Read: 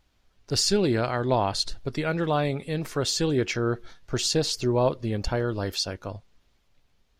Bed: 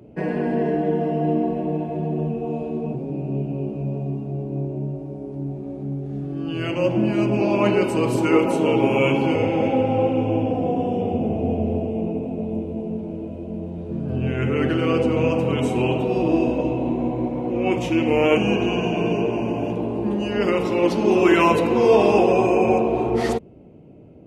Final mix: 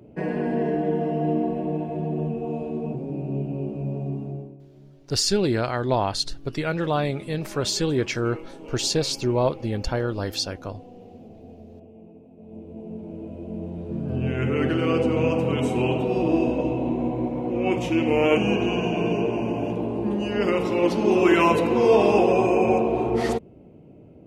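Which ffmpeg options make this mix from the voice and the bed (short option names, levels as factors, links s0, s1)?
-filter_complex "[0:a]adelay=4600,volume=1.12[s0];[1:a]volume=7.5,afade=t=out:st=4.25:d=0.32:silence=0.105925,afade=t=in:st=12.36:d=1.29:silence=0.1[s1];[s0][s1]amix=inputs=2:normalize=0"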